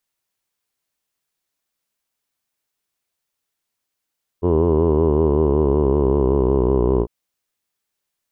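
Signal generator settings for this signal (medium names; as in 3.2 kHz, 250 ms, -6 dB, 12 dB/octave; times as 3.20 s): formant vowel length 2.65 s, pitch 84.1 Hz, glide -5.5 st, vibrato depth 1.1 st, F1 400 Hz, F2 1 kHz, F3 2.9 kHz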